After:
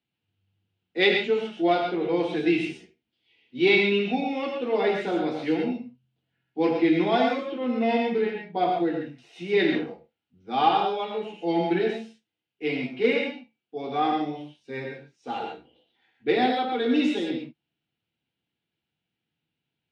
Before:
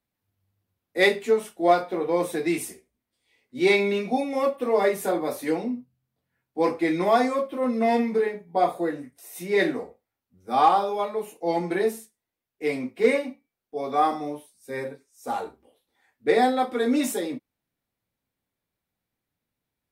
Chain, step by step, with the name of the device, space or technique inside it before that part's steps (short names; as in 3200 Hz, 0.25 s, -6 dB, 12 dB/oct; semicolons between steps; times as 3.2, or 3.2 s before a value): tone controls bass -2 dB, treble +11 dB; guitar cabinet (speaker cabinet 83–3500 Hz, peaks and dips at 150 Hz +7 dB, 340 Hz +4 dB, 580 Hz -9 dB, 1100 Hz -8 dB, 1900 Hz -4 dB, 2900 Hz +9 dB); non-linear reverb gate 0.15 s rising, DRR 2 dB; gain -1 dB